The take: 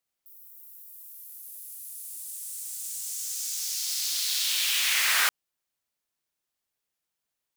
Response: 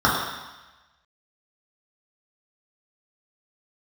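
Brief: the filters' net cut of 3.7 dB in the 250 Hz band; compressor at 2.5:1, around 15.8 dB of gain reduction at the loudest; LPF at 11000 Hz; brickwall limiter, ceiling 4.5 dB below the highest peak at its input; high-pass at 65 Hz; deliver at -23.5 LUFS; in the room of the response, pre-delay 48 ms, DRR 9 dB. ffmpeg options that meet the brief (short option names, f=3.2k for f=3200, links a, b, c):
-filter_complex "[0:a]highpass=65,lowpass=11k,equalizer=f=250:t=o:g=-5.5,acompressor=threshold=-46dB:ratio=2.5,alimiter=level_in=9dB:limit=-24dB:level=0:latency=1,volume=-9dB,asplit=2[a][b];[1:a]atrim=start_sample=2205,adelay=48[c];[b][c]afir=irnorm=-1:irlink=0,volume=-31dB[d];[a][d]amix=inputs=2:normalize=0,volume=19dB"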